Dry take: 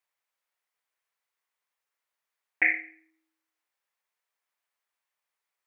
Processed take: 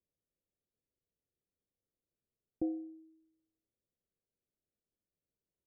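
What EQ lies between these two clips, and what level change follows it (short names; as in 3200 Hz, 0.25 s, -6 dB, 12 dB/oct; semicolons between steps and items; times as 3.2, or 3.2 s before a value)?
Gaussian blur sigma 24 samples; +15.0 dB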